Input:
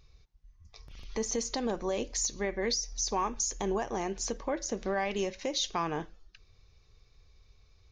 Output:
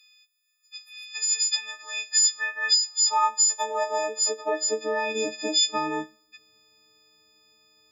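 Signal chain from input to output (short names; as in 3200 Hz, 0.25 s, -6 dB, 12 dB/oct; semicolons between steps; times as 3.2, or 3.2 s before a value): frequency quantiser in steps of 6 st; high-pass sweep 2500 Hz -> 270 Hz, 1.48–5.39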